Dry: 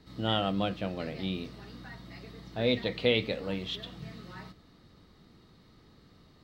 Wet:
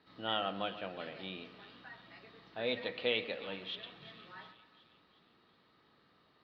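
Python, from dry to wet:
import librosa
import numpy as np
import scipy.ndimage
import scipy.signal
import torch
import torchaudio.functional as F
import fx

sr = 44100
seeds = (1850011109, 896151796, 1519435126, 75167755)

y = fx.highpass(x, sr, hz=1500.0, slope=6)
y = fx.air_absorb(y, sr, metres=360.0)
y = fx.notch(y, sr, hz=2100.0, q=12.0)
y = fx.echo_split(y, sr, split_hz=2600.0, low_ms=132, high_ms=360, feedback_pct=52, wet_db=-13.5)
y = F.gain(torch.from_numpy(y), 3.5).numpy()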